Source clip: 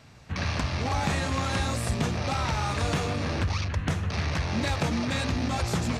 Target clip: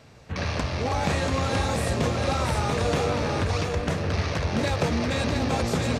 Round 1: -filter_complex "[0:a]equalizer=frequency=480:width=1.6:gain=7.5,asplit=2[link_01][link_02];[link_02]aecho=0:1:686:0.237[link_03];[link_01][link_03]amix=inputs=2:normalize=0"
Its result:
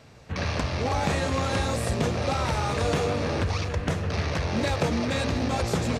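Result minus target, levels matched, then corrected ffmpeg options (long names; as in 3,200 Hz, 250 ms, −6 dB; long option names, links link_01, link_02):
echo-to-direct −8 dB
-filter_complex "[0:a]equalizer=frequency=480:width=1.6:gain=7.5,asplit=2[link_01][link_02];[link_02]aecho=0:1:686:0.596[link_03];[link_01][link_03]amix=inputs=2:normalize=0"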